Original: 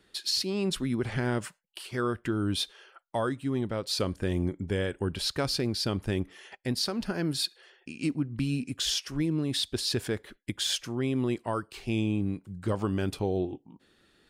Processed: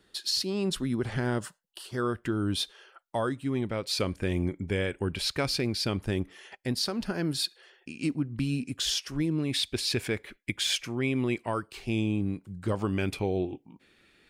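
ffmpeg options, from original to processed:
ffmpeg -i in.wav -af "asetnsamples=nb_out_samples=441:pad=0,asendcmd='1.39 equalizer g -12.5;2.01 equalizer g -1.5;3.46 equalizer g 8;5.99 equalizer g 0.5;9.4 equalizer g 11.5;11.66 equalizer g 1.5;12.93 equalizer g 13',equalizer=frequency=2300:width_type=o:width=0.36:gain=-4" out.wav

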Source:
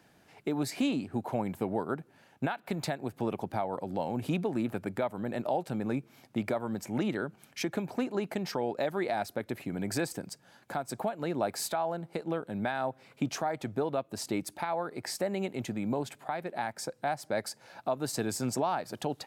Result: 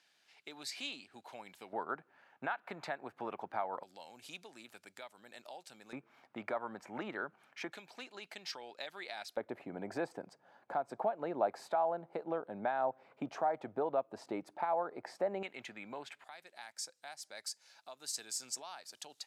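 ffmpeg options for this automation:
ffmpeg -i in.wav -af "asetnsamples=nb_out_samples=441:pad=0,asendcmd='1.73 bandpass f 1300;3.83 bandpass f 5600;5.93 bandpass f 1200;7.72 bandpass f 3900;9.37 bandpass f 760;15.43 bandpass f 2100;16.24 bandpass f 6100',bandpass=frequency=4000:width_type=q:width=1.1:csg=0" out.wav

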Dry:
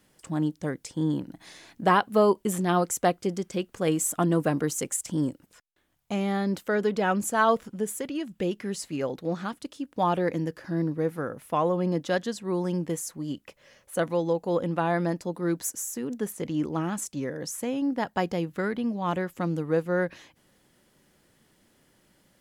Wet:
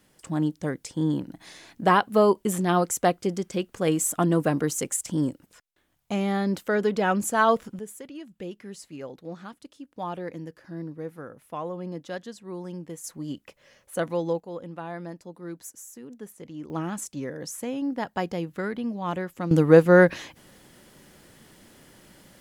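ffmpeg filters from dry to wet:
ffmpeg -i in.wav -af "asetnsamples=nb_out_samples=441:pad=0,asendcmd='7.79 volume volume -8.5dB;13.04 volume volume -1dB;14.4 volume volume -10.5dB;16.7 volume volume -1.5dB;19.51 volume volume 11dB',volume=1.5dB" out.wav

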